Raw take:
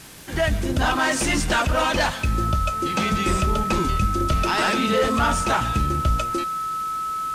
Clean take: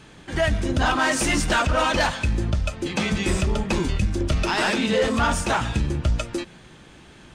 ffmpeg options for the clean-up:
-af "adeclick=t=4,bandreject=f=1300:w=30,afwtdn=0.0071"

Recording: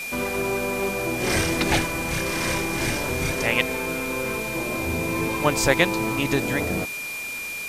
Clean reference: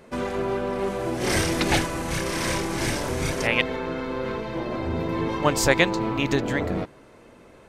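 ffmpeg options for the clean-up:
-af "bandreject=f=2400:w=30,afwtdn=0.014"

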